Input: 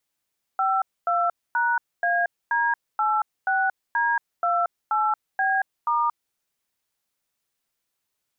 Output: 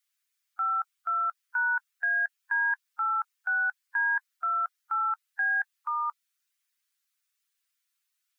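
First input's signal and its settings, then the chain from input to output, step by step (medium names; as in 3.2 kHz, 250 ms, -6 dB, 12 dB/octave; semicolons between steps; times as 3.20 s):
DTMF "52#AD86D28B*", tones 229 ms, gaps 251 ms, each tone -22 dBFS
coarse spectral quantiser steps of 15 dB; high-pass 1.3 kHz 24 dB/octave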